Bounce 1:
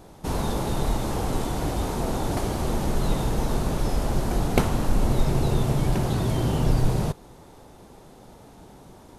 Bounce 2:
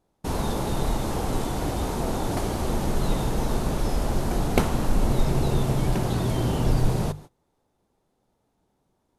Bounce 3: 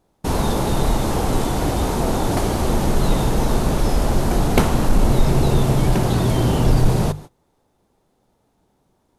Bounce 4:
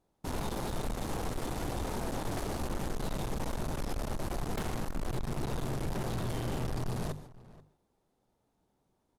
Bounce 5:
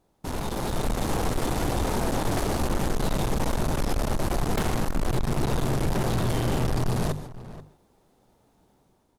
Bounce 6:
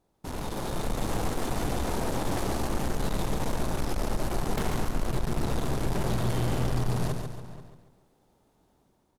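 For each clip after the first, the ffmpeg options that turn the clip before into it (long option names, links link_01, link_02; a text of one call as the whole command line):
ffmpeg -i in.wav -af "bandreject=frequency=50:width_type=h:width=6,bandreject=frequency=100:width_type=h:width=6,bandreject=frequency=150:width_type=h:width=6,agate=range=-24dB:threshold=-40dB:ratio=16:detection=peak" out.wav
ffmpeg -i in.wav -af "acontrast=82" out.wav
ffmpeg -i in.wav -filter_complex "[0:a]aeval=exprs='(tanh(15.8*val(0)+0.6)-tanh(0.6))/15.8':channel_layout=same,asplit=2[link_01][link_02];[link_02]adelay=484,volume=-19dB,highshelf=frequency=4000:gain=-10.9[link_03];[link_01][link_03]amix=inputs=2:normalize=0,volume=-8.5dB" out.wav
ffmpeg -i in.wav -filter_complex "[0:a]asplit=2[link_01][link_02];[link_02]alimiter=level_in=14dB:limit=-24dB:level=0:latency=1:release=288,volume=-14dB,volume=1.5dB[link_03];[link_01][link_03]amix=inputs=2:normalize=0,dynaudnorm=framelen=460:gausssize=3:maxgain=5.5dB,volume=1dB" out.wav
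ffmpeg -i in.wav -af "aecho=1:1:140|280|420|560|700:0.473|0.199|0.0835|0.0351|0.0147,volume=-4.5dB" out.wav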